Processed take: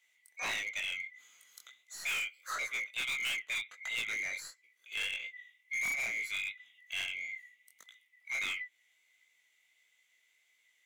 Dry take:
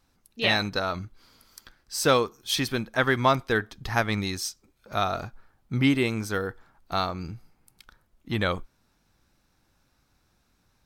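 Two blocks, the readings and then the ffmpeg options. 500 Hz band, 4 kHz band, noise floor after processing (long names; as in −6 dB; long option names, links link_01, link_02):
−28.0 dB, −8.0 dB, −73 dBFS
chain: -filter_complex "[0:a]afftfilt=real='real(if(lt(b,920),b+92*(1-2*mod(floor(b/92),2)),b),0)':imag='imag(if(lt(b,920),b+92*(1-2*mod(floor(b/92),2)),b),0)':win_size=2048:overlap=0.75,flanger=delay=17.5:depth=5.8:speed=1.5,highpass=frequency=1400:poles=1,aeval=exprs='0.299*(cos(1*acos(clip(val(0)/0.299,-1,1)))-cos(1*PI/2))+0.0168*(cos(2*acos(clip(val(0)/0.299,-1,1)))-cos(2*PI/2))+0.00668*(cos(6*acos(clip(val(0)/0.299,-1,1)))-cos(6*PI/2))':channel_layout=same,acrossover=split=2900[link_01][link_02];[link_01]volume=33.5dB,asoftclip=hard,volume=-33.5dB[link_03];[link_02]acompressor=threshold=-48dB:ratio=6[link_04];[link_03][link_04]amix=inputs=2:normalize=0"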